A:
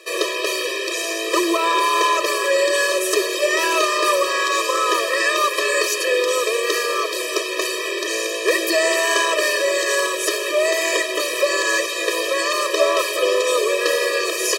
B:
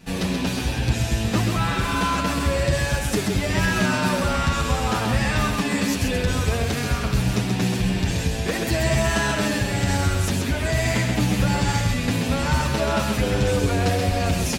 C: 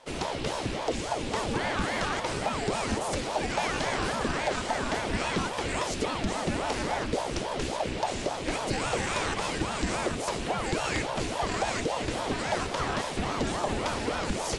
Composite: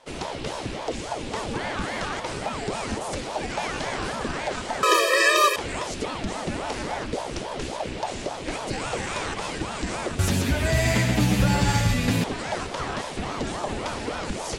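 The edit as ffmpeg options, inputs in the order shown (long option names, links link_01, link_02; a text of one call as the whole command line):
ffmpeg -i take0.wav -i take1.wav -i take2.wav -filter_complex "[2:a]asplit=3[link_01][link_02][link_03];[link_01]atrim=end=4.832[link_04];[0:a]atrim=start=4.828:end=5.562[link_05];[link_02]atrim=start=5.558:end=10.192[link_06];[1:a]atrim=start=10.188:end=12.242[link_07];[link_03]atrim=start=12.238[link_08];[link_04][link_05]acrossfade=duration=0.004:curve1=hsin:curve2=hsin[link_09];[link_09][link_06]acrossfade=duration=0.004:curve1=hsin:curve2=hsin[link_10];[link_10][link_07]acrossfade=duration=0.004:curve1=hsin:curve2=hsin[link_11];[link_11][link_08]acrossfade=duration=0.004:curve1=hsin:curve2=hsin" out.wav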